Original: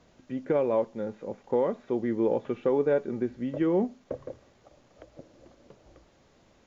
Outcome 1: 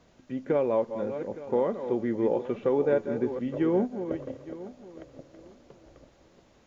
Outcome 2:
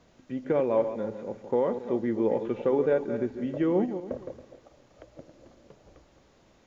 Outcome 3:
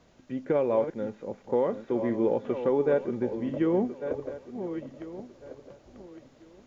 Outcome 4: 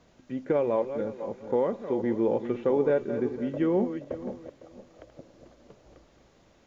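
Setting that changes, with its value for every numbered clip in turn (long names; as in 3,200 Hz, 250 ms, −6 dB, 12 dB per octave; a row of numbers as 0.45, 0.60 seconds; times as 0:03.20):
feedback delay that plays each chunk backwards, delay time: 432, 138, 700, 253 milliseconds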